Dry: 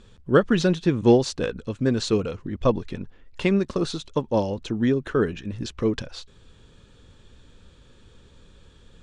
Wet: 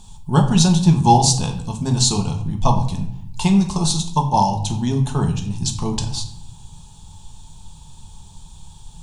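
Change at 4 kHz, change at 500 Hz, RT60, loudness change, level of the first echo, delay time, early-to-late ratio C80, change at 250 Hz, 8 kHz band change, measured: +10.5 dB, -6.0 dB, 0.70 s, +5.0 dB, no echo, no echo, 12.5 dB, +4.0 dB, +18.0 dB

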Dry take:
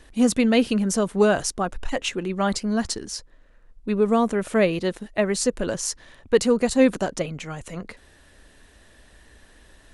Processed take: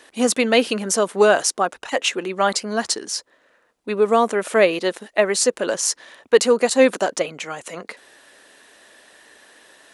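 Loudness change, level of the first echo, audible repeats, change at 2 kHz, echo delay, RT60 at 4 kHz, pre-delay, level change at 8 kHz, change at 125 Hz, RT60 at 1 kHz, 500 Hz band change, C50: +3.0 dB, no echo, no echo, +6.5 dB, no echo, no reverb, no reverb, +6.5 dB, no reading, no reverb, +4.5 dB, no reverb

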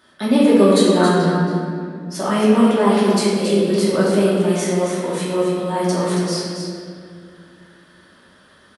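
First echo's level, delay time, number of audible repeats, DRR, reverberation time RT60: -6.0 dB, 274 ms, 1, -8.5 dB, 2.2 s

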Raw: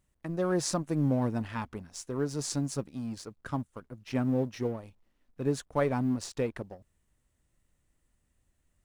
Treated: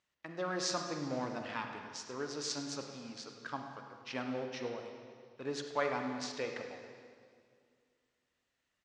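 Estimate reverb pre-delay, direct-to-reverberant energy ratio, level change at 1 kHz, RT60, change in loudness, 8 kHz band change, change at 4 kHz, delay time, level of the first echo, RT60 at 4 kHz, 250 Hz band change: 32 ms, 3.5 dB, -1.5 dB, 2.1 s, -7.0 dB, -4.5 dB, +1.5 dB, 103 ms, -14.0 dB, 1.9 s, -11.0 dB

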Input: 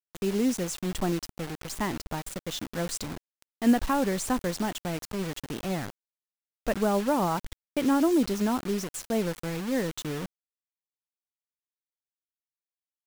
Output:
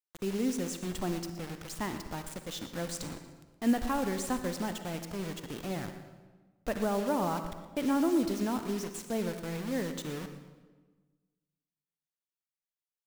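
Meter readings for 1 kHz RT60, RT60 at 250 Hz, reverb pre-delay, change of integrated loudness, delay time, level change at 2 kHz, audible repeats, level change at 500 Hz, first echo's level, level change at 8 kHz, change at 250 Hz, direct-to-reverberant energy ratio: 1.3 s, 1.7 s, 39 ms, -4.5 dB, 119 ms, -5.0 dB, 2, -4.5 dB, -14.0 dB, -5.0 dB, -4.5 dB, 7.5 dB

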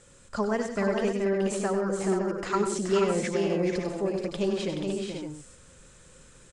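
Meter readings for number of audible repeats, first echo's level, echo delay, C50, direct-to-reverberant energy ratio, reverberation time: 6, -8.0 dB, 96 ms, no reverb, no reverb, no reverb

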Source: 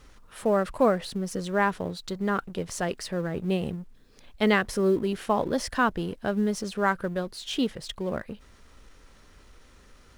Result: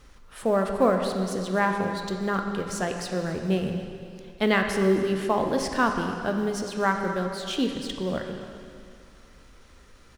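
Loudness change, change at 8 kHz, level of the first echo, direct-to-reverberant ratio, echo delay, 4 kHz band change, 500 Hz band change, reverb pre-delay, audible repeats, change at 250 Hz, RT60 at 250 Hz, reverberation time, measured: +1.5 dB, +1.0 dB, -17.5 dB, 3.5 dB, 260 ms, +1.5 dB, +1.5 dB, 7 ms, 1, +1.5 dB, 2.4 s, 2.4 s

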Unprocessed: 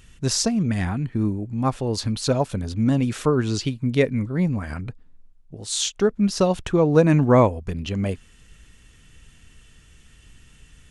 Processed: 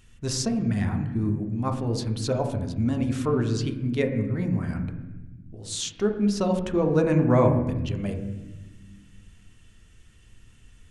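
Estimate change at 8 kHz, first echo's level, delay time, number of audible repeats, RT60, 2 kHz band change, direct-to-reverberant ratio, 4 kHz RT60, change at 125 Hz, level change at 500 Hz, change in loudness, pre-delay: -6.5 dB, no echo, no echo, no echo, 1.1 s, -5.5 dB, 4.5 dB, 1.0 s, -2.5 dB, -4.0 dB, -3.5 dB, 3 ms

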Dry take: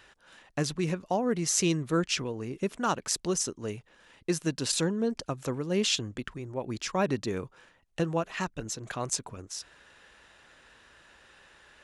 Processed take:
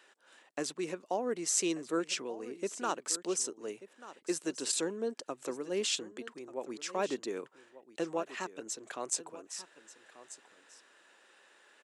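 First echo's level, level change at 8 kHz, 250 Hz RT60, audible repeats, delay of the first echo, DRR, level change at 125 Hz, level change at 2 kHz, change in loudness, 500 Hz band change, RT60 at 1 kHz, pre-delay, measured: -16.0 dB, -2.5 dB, no reverb, 1, 1187 ms, no reverb, -20.0 dB, -5.5 dB, -5.0 dB, -4.0 dB, no reverb, no reverb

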